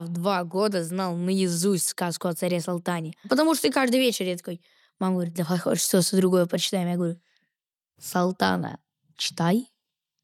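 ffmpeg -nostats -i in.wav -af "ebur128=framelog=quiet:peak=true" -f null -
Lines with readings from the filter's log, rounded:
Integrated loudness:
  I:         -24.8 LUFS
  Threshold: -35.3 LUFS
Loudness range:
  LRA:         3.8 LU
  Threshold: -45.2 LUFS
  LRA low:   -27.8 LUFS
  LRA high:  -24.0 LUFS
True peak:
  Peak:       -7.9 dBFS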